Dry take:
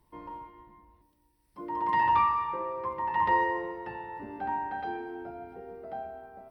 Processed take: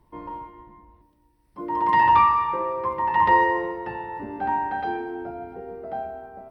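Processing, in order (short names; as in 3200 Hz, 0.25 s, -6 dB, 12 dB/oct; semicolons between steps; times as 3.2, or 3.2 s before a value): mismatched tape noise reduction decoder only; gain +7.5 dB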